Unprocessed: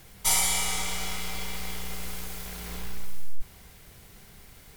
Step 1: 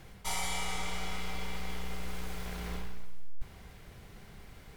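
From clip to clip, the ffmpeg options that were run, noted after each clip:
-af "lowpass=f=2300:p=1,areverse,acompressor=threshold=0.0282:ratio=5,areverse,volume=1.19"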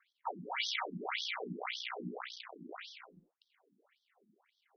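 -af "anlmdn=0.000398,aeval=exprs='0.0841*(cos(1*acos(clip(val(0)/0.0841,-1,1)))-cos(1*PI/2))+0.0168*(cos(2*acos(clip(val(0)/0.0841,-1,1)))-cos(2*PI/2))+0.0106*(cos(4*acos(clip(val(0)/0.0841,-1,1)))-cos(4*PI/2))+0.00422*(cos(6*acos(clip(val(0)/0.0841,-1,1)))-cos(6*PI/2))+0.015*(cos(7*acos(clip(val(0)/0.0841,-1,1)))-cos(7*PI/2))':c=same,afftfilt=real='re*between(b*sr/1024,240*pow(4500/240,0.5+0.5*sin(2*PI*1.8*pts/sr))/1.41,240*pow(4500/240,0.5+0.5*sin(2*PI*1.8*pts/sr))*1.41)':imag='im*between(b*sr/1024,240*pow(4500/240,0.5+0.5*sin(2*PI*1.8*pts/sr))/1.41,240*pow(4500/240,0.5+0.5*sin(2*PI*1.8*pts/sr))*1.41)':win_size=1024:overlap=0.75,volume=1.88"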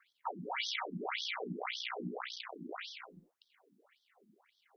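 -af "acompressor=threshold=0.00794:ratio=2,volume=1.58"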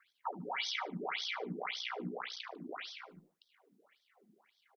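-af "aecho=1:1:74|148:0.106|0.0318"

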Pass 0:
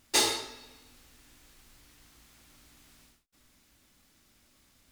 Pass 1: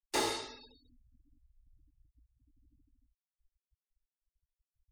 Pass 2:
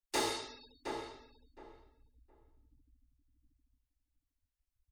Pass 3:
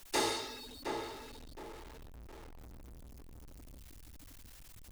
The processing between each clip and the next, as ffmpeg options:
-filter_complex "[0:a]afftfilt=real='re*gte(hypot(re,im),0.00447)':imag='im*gte(hypot(re,im),0.00447)':win_size=1024:overlap=0.75,acrossover=split=820|1800[s0][s1][s2];[s2]alimiter=level_in=1.06:limit=0.0631:level=0:latency=1:release=257,volume=0.944[s3];[s0][s1][s3]amix=inputs=3:normalize=0,volume=0.794"
-filter_complex "[0:a]asplit=2[s0][s1];[s1]adelay=715,lowpass=f=1600:p=1,volume=0.562,asplit=2[s2][s3];[s3]adelay=715,lowpass=f=1600:p=1,volume=0.21,asplit=2[s4][s5];[s5]adelay=715,lowpass=f=1600:p=1,volume=0.21[s6];[s0][s2][s4][s6]amix=inputs=4:normalize=0,volume=0.841"
-af "aeval=exprs='val(0)+0.5*0.00447*sgn(val(0))':c=same,volume=1.12"

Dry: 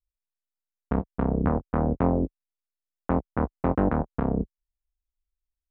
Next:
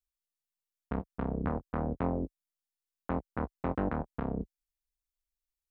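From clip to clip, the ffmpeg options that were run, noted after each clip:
-af "highshelf=f=2300:g=11,volume=0.355"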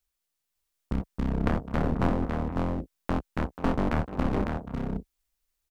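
-af "aecho=1:1:302|485|554|590:0.119|0.158|0.668|0.158,aeval=exprs='clip(val(0),-1,0.0112)':c=same,volume=2.82"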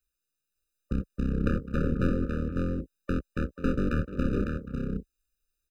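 -af "afftfilt=real='re*eq(mod(floor(b*sr/1024/590),2),0)':imag='im*eq(mod(floor(b*sr/1024/590),2),0)':win_size=1024:overlap=0.75"

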